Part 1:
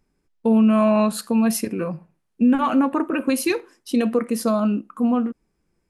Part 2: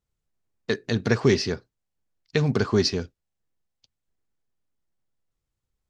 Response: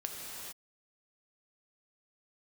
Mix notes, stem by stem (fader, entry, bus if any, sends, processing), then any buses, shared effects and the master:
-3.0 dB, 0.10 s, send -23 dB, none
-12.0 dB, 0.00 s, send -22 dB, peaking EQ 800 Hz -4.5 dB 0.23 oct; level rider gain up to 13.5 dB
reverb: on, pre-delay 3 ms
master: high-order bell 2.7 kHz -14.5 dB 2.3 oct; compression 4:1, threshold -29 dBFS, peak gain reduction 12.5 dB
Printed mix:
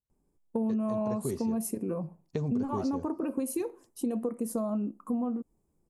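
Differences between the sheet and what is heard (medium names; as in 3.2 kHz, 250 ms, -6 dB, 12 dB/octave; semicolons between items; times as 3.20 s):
stem 1: send off; reverb return -8.5 dB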